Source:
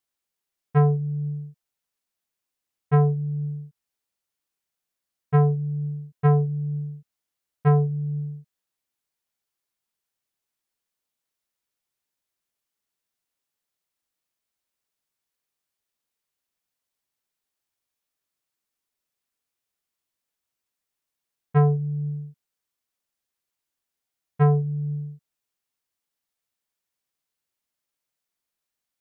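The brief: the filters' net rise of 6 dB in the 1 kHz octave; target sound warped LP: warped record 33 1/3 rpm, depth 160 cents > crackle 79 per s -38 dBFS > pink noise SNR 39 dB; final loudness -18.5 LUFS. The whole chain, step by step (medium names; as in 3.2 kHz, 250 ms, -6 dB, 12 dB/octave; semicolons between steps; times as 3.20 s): peaking EQ 1 kHz +8.5 dB; warped record 33 1/3 rpm, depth 160 cents; crackle 79 per s -38 dBFS; pink noise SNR 39 dB; trim +5 dB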